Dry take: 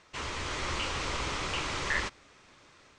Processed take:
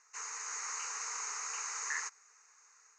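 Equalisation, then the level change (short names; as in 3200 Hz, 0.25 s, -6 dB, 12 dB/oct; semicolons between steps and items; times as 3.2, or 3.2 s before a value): brick-wall FIR high-pass 410 Hz; synth low-pass 6600 Hz, resonance Q 11; fixed phaser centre 1400 Hz, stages 4; -6.5 dB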